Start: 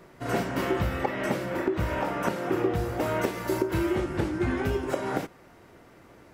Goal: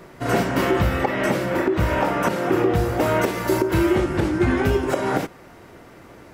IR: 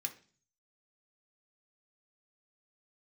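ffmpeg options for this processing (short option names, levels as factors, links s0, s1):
-af "alimiter=level_in=5.96:limit=0.891:release=50:level=0:latency=1,volume=0.422"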